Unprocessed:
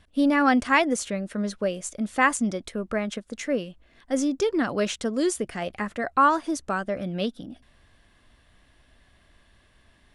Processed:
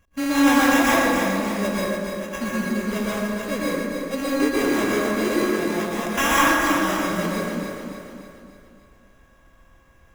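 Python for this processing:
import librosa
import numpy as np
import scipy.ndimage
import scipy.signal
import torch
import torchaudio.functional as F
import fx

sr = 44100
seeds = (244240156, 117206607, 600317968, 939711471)

p1 = np.r_[np.sort(x[:len(x) // 16 * 16].reshape(-1, 16), axis=1).ravel(), x[len(x) // 16 * 16:]]
p2 = fx.tone_stack(p1, sr, knobs='6-0-2', at=(1.82, 2.32))
p3 = fx.sample_hold(p2, sr, seeds[0], rate_hz=4400.0, jitter_pct=0)
p4 = p3 + fx.echo_feedback(p3, sr, ms=290, feedback_pct=50, wet_db=-6.5, dry=0)
p5 = fx.rev_plate(p4, sr, seeds[1], rt60_s=1.6, hf_ratio=0.45, predelay_ms=105, drr_db=-6.5)
y = p5 * 10.0 ** (-4.5 / 20.0)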